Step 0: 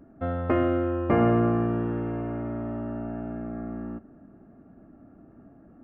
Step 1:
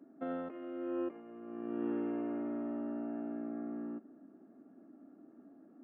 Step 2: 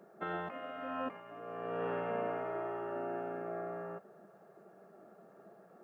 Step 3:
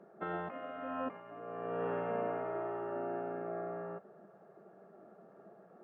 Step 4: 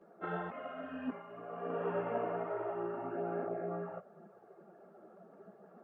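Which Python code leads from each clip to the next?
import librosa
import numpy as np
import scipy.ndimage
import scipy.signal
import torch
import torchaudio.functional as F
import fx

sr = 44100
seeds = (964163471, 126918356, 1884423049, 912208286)

y1 = fx.dynamic_eq(x, sr, hz=2800.0, q=2.2, threshold_db=-54.0, ratio=4.0, max_db=5)
y1 = fx.over_compress(y1, sr, threshold_db=-28.0, ratio=-0.5)
y1 = fx.ladder_highpass(y1, sr, hz=230.0, resonance_pct=45)
y1 = F.gain(torch.from_numpy(y1), -3.5).numpy()
y2 = fx.low_shelf(y1, sr, hz=120.0, db=-9.5)
y2 = fx.spec_gate(y2, sr, threshold_db=-10, keep='weak')
y2 = F.gain(torch.from_numpy(y2), 11.0).numpy()
y3 = fx.lowpass(y2, sr, hz=1700.0, slope=6)
y3 = F.gain(torch.from_numpy(y3), 1.0).numpy()
y4 = fx.spec_repair(y3, sr, seeds[0], start_s=0.78, length_s=0.32, low_hz=420.0, high_hz=1500.0, source='both')
y4 = fx.notch(y4, sr, hz=1800.0, q=20.0)
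y4 = fx.chorus_voices(y4, sr, voices=4, hz=1.1, base_ms=15, depth_ms=3.0, mix_pct=70)
y4 = F.gain(torch.from_numpy(y4), 2.5).numpy()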